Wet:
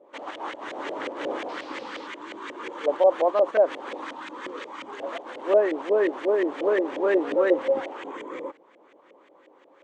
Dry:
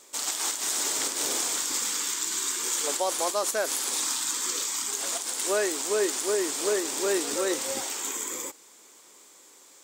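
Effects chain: LFO low-pass saw up 5.6 Hz 520–2200 Hz; speaker cabinet 120–9100 Hz, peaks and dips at 310 Hz +6 dB, 550 Hz +8 dB, 1400 Hz -4 dB, 3000 Hz +5 dB, 5100 Hz -6 dB, 7400 Hz -6 dB; 1.48–2.06 band noise 710–4600 Hz -49 dBFS

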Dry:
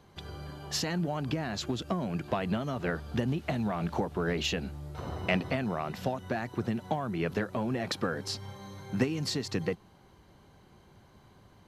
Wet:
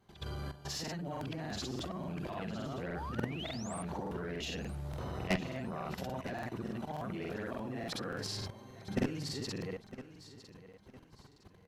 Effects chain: short-time reversal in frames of 0.139 s; painted sound rise, 2.74–3.8, 380–10000 Hz -44 dBFS; level quantiser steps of 15 dB; tube stage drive 31 dB, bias 0.4; on a send: feedback echo 0.957 s, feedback 33%, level -15 dB; on the sum: crackling interface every 0.29 s, samples 2048, repeat, from 0.83; gain +7 dB

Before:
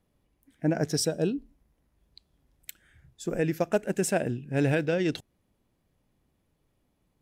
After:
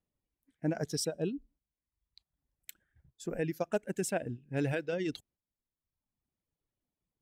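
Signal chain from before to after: reverb removal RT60 1.2 s; gate -58 dBFS, range -9 dB; gain -6 dB

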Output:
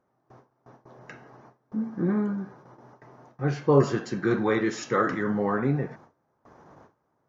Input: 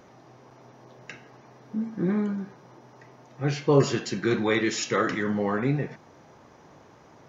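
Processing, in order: gate with hold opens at -41 dBFS; resonant high shelf 1900 Hz -7.5 dB, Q 1.5

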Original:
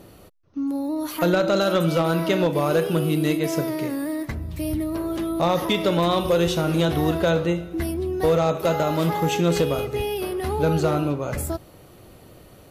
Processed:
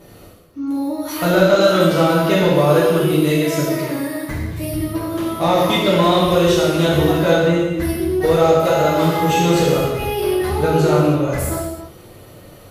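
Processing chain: non-linear reverb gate 0.36 s falling, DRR -7.5 dB; gain -1.5 dB

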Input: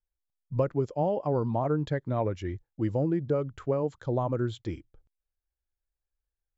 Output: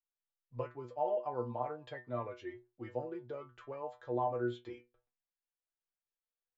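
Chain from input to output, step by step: three-band isolator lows -17 dB, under 370 Hz, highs -13 dB, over 3800 Hz; metallic resonator 120 Hz, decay 0.27 s, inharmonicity 0.002; gain +4.5 dB

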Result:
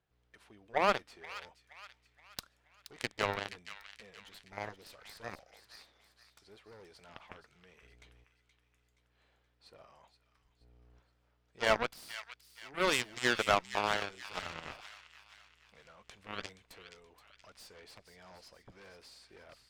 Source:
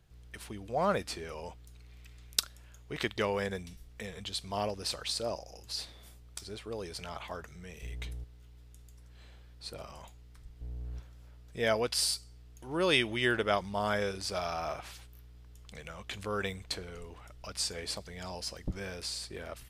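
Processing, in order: overdrive pedal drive 18 dB, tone 1400 Hz, clips at -4.5 dBFS; spectral gain 4.44–4.84, 870–4200 Hz -12 dB; added harmonics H 3 -18 dB, 7 -20 dB, 8 -39 dB, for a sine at -4.5 dBFS; in parallel at -6.5 dB: wavefolder -21.5 dBFS; on the sum: thin delay 0.474 s, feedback 44%, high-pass 1700 Hz, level -10 dB

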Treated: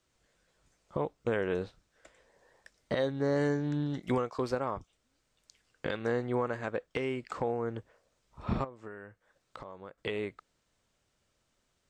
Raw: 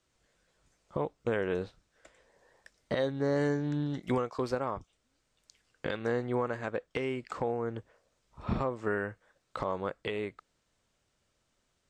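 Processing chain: 8.64–9.98 compressor 3:1, threshold -47 dBFS, peak gain reduction 15 dB

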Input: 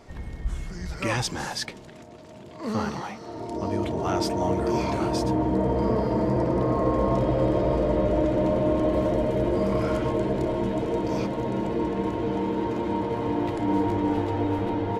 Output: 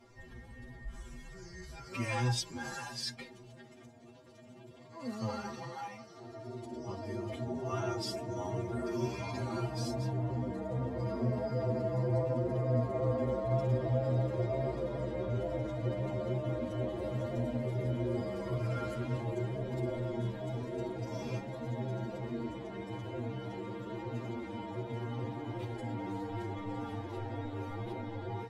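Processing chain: time stretch by phase-locked vocoder 1.9×; metallic resonator 120 Hz, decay 0.21 s, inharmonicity 0.008

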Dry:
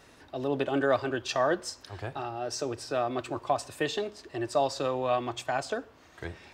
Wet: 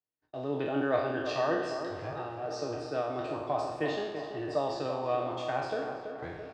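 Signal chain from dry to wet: spectral trails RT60 0.93 s; HPF 57 Hz; gate -47 dBFS, range -39 dB; bell 4700 Hz +5 dB 0.52 oct; comb 6.5 ms, depth 37%; in parallel at -9 dB: bit-crush 7-bit; on the sum: tape spacing loss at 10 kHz 23 dB; on a send: tape echo 0.333 s, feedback 63%, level -7 dB, low-pass 2000 Hz; on the sum: gain -7 dB

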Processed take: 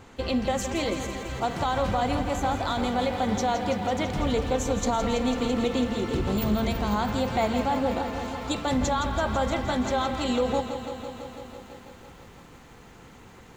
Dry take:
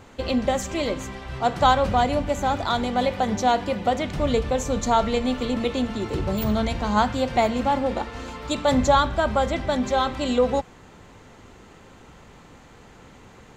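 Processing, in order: notch 590 Hz, Q 12; limiter -15.5 dBFS, peak gain reduction 10 dB; lo-fi delay 0.166 s, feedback 80%, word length 9-bit, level -10 dB; gain -1.5 dB

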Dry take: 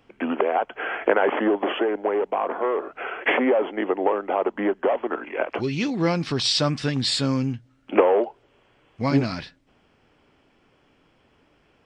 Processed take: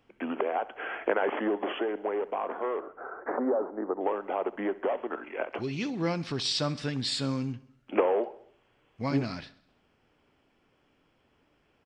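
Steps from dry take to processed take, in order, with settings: 2.8–4.01 steep low-pass 1500 Hz 48 dB/oct; feedback echo 66 ms, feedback 57%, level -19 dB; gain -7.5 dB

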